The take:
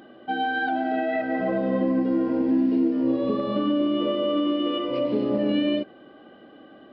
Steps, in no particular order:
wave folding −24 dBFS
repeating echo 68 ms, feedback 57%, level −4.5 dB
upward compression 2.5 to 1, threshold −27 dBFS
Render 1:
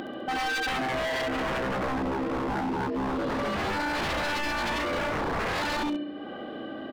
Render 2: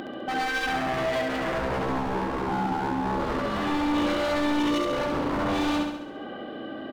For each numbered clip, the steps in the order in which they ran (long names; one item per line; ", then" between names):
repeating echo, then upward compression, then wave folding
upward compression, then wave folding, then repeating echo